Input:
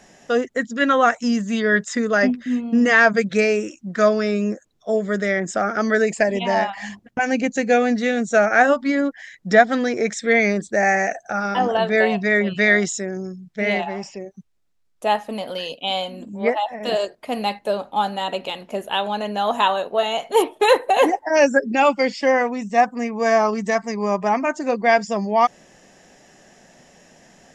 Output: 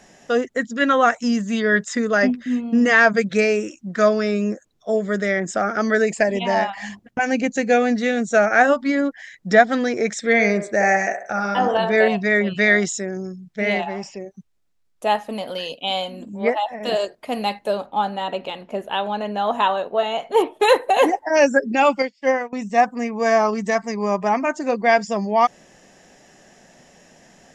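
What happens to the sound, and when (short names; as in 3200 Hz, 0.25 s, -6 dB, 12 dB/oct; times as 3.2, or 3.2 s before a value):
10.12–12.08 band-limited delay 67 ms, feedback 35%, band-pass 830 Hz, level -5.5 dB
17.86–20.55 high shelf 4600 Hz -12 dB
22.02–22.53 upward expander 2.5:1, over -34 dBFS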